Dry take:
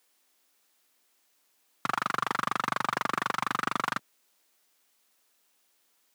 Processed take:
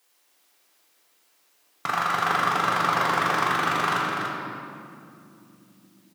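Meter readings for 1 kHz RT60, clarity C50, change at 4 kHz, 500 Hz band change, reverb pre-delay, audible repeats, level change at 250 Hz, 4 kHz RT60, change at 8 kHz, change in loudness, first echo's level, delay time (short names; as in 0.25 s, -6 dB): 2.3 s, -2.0 dB, +7.0 dB, +9.0 dB, 3 ms, 1, +6.5 dB, 1.5 s, +5.5 dB, +6.5 dB, -6.0 dB, 0.29 s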